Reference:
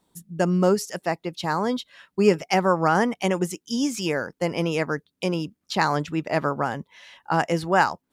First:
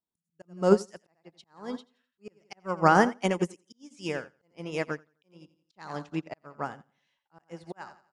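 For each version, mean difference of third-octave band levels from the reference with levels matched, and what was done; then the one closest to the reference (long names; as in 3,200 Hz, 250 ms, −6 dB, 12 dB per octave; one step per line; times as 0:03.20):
11.5 dB: downsampling to 22,050 Hz
on a send: repeating echo 86 ms, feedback 43%, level −11 dB
on the sum: volume swells 329 ms
expander for the loud parts 2.5 to 1, over −38 dBFS
level +3 dB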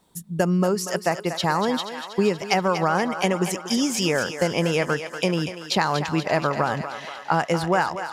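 7.0 dB: parametric band 290 Hz −4 dB 0.61 octaves
downward compressor, threshold −24 dBFS, peak gain reduction 11 dB
feedback echo with a high-pass in the loop 239 ms, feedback 67%, high-pass 460 Hz, level −9 dB
level +6.5 dB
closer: second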